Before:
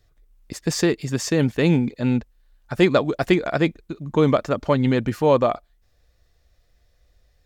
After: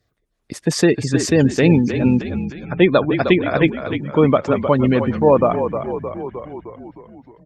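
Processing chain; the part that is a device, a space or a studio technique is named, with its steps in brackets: 3.14–4.22 dynamic EQ 2800 Hz, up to +4 dB, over -42 dBFS, Q 3.4; frequency-shifting echo 0.308 s, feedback 57%, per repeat -41 Hz, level -8 dB; noise-suppressed video call (HPF 100 Hz 12 dB/oct; spectral gate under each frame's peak -30 dB strong; AGC gain up to 7 dB; Opus 24 kbps 48000 Hz)

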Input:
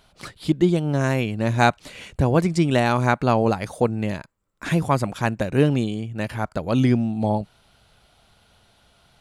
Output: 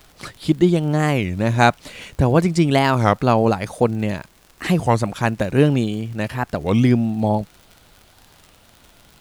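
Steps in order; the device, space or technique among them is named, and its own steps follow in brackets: warped LP (record warp 33 1/3 rpm, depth 250 cents; crackle 66/s -36 dBFS; pink noise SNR 35 dB); gain +3 dB

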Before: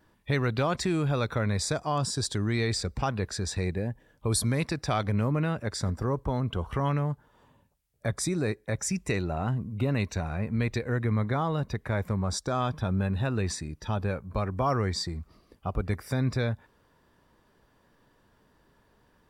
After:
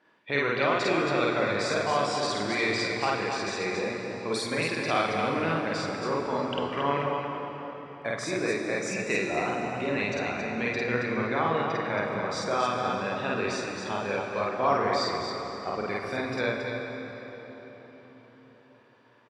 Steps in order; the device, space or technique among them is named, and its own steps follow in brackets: station announcement (BPF 340–4200 Hz; bell 2400 Hz +5 dB 0.55 oct; loudspeakers at several distances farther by 17 m 0 dB, 94 m -5 dB; reverb RT60 4.6 s, pre-delay 25 ms, DRR 3 dB)

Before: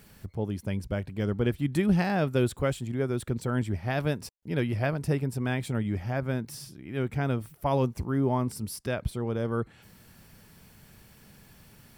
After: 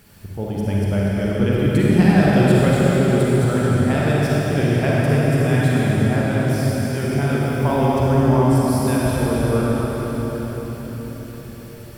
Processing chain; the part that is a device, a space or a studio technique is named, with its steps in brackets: cathedral (reverb RT60 5.6 s, pre-delay 40 ms, DRR -7 dB); gain +3 dB

